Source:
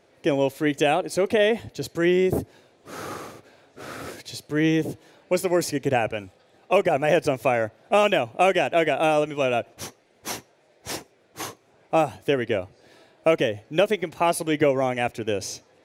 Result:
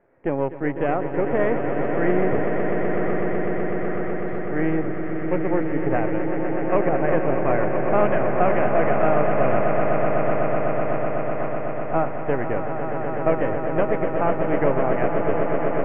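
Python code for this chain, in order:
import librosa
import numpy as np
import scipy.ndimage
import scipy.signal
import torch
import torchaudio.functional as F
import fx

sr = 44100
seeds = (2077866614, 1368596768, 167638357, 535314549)

y = np.where(x < 0.0, 10.0 ** (-7.0 / 20.0) * x, x)
y = scipy.signal.sosfilt(scipy.signal.butter(6, 2000.0, 'lowpass', fs=sr, output='sos'), y)
y = fx.echo_swell(y, sr, ms=125, loudest=8, wet_db=-9)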